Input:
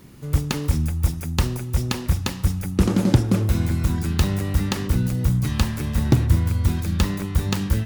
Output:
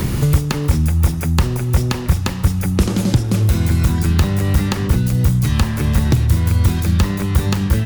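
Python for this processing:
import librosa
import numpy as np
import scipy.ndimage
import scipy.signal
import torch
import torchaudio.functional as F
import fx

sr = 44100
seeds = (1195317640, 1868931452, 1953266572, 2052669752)

p1 = fx.peak_eq(x, sr, hz=270.0, db=-3.0, octaves=0.44)
p2 = np.clip(p1, -10.0 ** (-16.0 / 20.0), 10.0 ** (-16.0 / 20.0))
p3 = p1 + F.gain(torch.from_numpy(p2), -10.5).numpy()
p4 = fx.band_squash(p3, sr, depth_pct=100)
y = F.gain(torch.from_numpy(p4), 2.5).numpy()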